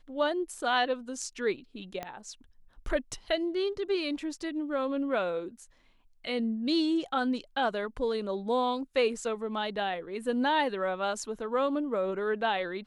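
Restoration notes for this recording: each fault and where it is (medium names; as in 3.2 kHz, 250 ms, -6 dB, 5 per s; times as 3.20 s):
2.03 s: pop -21 dBFS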